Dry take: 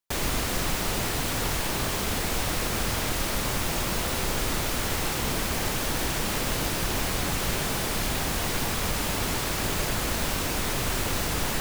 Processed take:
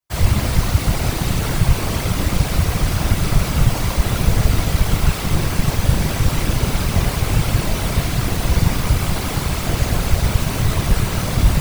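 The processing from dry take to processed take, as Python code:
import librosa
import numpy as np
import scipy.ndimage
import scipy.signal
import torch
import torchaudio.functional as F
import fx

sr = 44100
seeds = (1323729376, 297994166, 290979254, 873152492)

y = fx.room_shoebox(x, sr, seeds[0], volume_m3=300.0, walls='furnished', distance_m=5.5)
y = fx.whisperise(y, sr, seeds[1])
y = y * 10.0 ** (-5.5 / 20.0)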